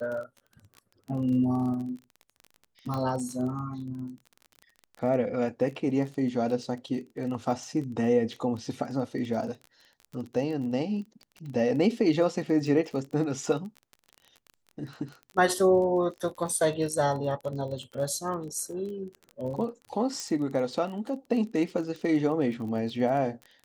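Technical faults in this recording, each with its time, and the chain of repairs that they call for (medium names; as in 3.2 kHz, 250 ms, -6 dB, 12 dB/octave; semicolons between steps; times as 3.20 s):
crackle 27 per s -36 dBFS
2.94 s: pop -20 dBFS
20.20 s: pop -20 dBFS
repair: de-click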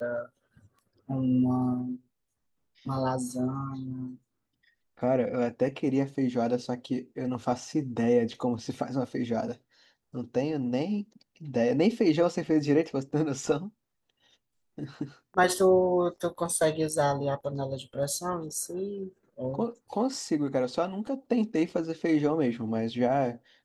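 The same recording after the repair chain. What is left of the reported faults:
nothing left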